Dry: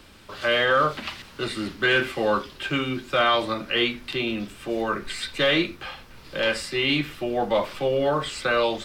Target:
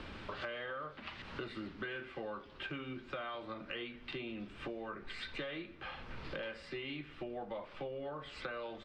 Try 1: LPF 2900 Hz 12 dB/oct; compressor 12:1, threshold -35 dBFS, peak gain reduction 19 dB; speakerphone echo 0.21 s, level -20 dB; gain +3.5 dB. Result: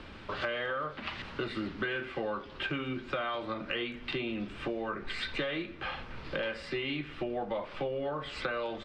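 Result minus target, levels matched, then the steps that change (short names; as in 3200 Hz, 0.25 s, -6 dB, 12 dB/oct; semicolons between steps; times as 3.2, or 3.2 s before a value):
compressor: peak gain reduction -8.5 dB
change: compressor 12:1, threshold -44 dBFS, peak gain reduction 27 dB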